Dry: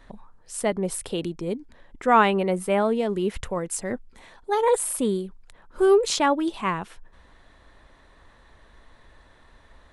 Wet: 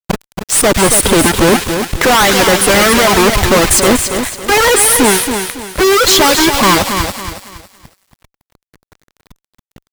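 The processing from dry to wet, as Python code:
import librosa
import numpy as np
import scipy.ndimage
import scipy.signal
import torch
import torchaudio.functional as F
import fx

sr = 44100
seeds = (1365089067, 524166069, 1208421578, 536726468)

p1 = fx.halfwave_hold(x, sr)
p2 = fx.dereverb_blind(p1, sr, rt60_s=0.82)
p3 = fx.hpss(p2, sr, part='harmonic', gain_db=-18)
p4 = fx.rider(p3, sr, range_db=10, speed_s=0.5)
p5 = p4 + fx.echo_wet_highpass(p4, sr, ms=105, feedback_pct=72, hz=1900.0, wet_db=-19.0, dry=0)
p6 = fx.fuzz(p5, sr, gain_db=40.0, gate_db=-48.0)
p7 = fx.echo_crushed(p6, sr, ms=278, feedback_pct=35, bits=8, wet_db=-7.0)
y = p7 * 10.0 ** (5.5 / 20.0)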